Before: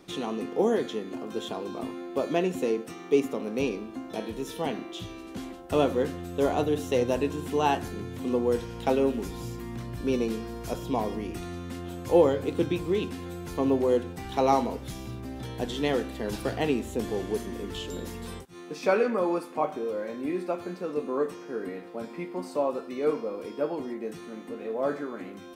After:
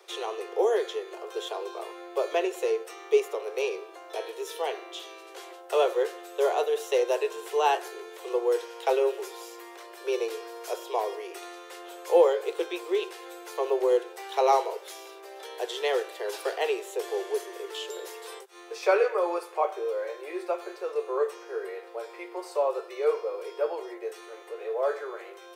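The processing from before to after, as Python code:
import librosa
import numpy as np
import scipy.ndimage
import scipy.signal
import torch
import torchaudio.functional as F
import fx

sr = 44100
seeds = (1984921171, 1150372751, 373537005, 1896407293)

y = scipy.signal.sosfilt(scipy.signal.butter(16, 370.0, 'highpass', fs=sr, output='sos'), x)
y = y * librosa.db_to_amplitude(1.5)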